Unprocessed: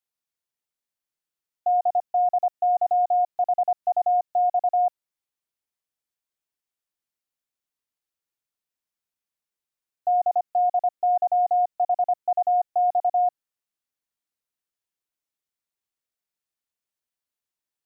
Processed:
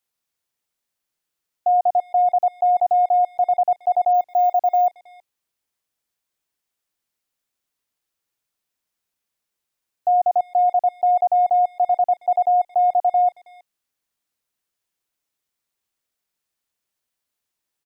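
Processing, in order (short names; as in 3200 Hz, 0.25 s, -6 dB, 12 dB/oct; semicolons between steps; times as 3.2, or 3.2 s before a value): limiter -20 dBFS, peak gain reduction 3.5 dB; speakerphone echo 0.32 s, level -23 dB; 4.14–4.87 careless resampling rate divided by 2×, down none, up hold; gain +7.5 dB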